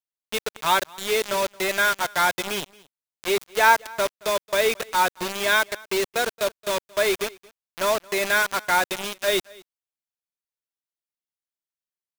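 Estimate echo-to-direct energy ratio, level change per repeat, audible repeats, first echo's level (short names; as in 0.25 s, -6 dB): -24.0 dB, no steady repeat, 1, -24.0 dB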